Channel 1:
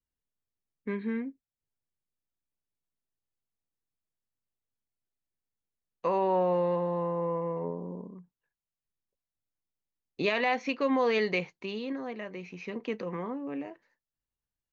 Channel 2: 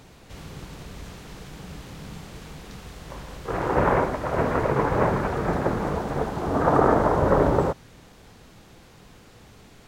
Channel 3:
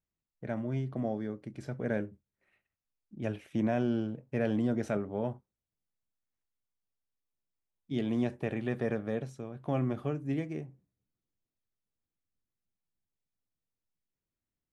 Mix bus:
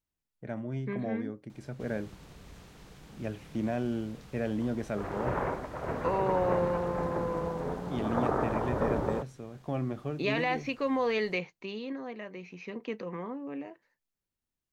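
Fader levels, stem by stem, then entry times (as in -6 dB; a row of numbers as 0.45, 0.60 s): -2.5, -11.0, -2.0 dB; 0.00, 1.50, 0.00 s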